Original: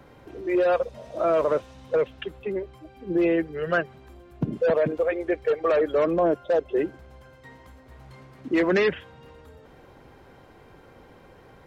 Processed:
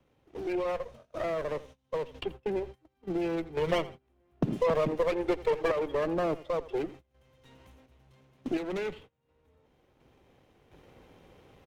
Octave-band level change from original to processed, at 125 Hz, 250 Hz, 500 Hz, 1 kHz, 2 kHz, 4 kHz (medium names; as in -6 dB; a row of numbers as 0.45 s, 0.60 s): -3.5 dB, -7.0 dB, -7.5 dB, -5.5 dB, -9.5 dB, -2.5 dB